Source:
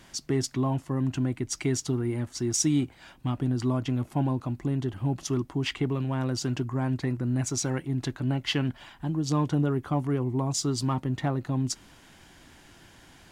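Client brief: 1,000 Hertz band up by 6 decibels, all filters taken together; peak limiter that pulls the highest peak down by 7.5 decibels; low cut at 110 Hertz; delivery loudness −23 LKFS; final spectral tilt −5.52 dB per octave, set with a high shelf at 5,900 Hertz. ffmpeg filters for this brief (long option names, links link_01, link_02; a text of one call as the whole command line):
ffmpeg -i in.wav -af "highpass=110,equalizer=frequency=1000:width_type=o:gain=7.5,highshelf=frequency=5900:gain=-6.5,volume=7.5dB,alimiter=limit=-11.5dB:level=0:latency=1" out.wav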